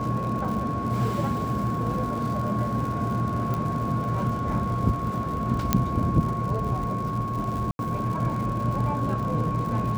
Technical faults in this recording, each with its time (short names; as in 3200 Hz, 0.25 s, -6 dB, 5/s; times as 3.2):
crackle 120/s -33 dBFS
tone 1100 Hz -30 dBFS
3.54 pop
5.73 pop -5 dBFS
7.71–7.79 gap 81 ms